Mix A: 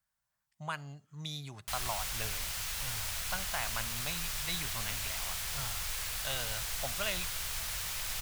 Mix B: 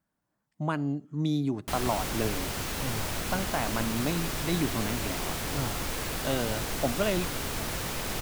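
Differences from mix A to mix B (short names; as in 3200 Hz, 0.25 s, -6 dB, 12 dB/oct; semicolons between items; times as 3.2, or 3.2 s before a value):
speech -3.5 dB; master: remove passive tone stack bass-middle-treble 10-0-10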